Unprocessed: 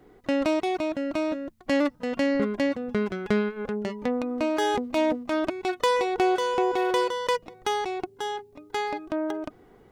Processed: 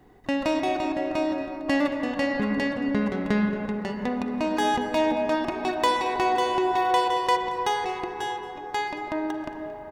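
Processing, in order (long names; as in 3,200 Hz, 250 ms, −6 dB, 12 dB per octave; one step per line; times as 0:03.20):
comb filter 1.1 ms, depth 43%
single-tap delay 226 ms −19 dB
on a send at −3.5 dB: convolution reverb RT60 4.3 s, pre-delay 38 ms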